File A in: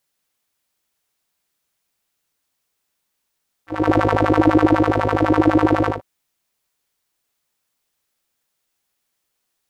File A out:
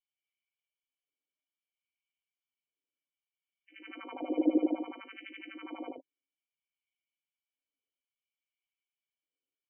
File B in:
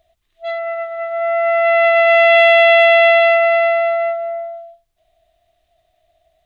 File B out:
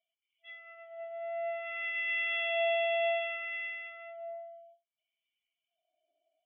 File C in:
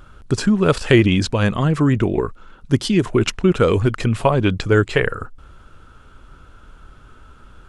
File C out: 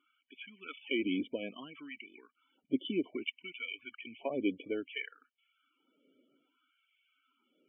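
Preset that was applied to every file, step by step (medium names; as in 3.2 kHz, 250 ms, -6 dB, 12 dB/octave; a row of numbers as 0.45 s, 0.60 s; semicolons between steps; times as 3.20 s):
LFO high-pass sine 0.61 Hz 520–1900 Hz; cascade formant filter i; loudest bins only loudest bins 32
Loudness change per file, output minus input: -17.0 LU, -20.5 LU, -20.0 LU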